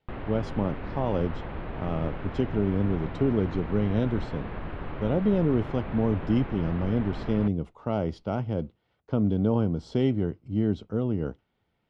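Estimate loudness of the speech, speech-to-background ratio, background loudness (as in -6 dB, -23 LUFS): -28.0 LUFS, 9.5 dB, -37.5 LUFS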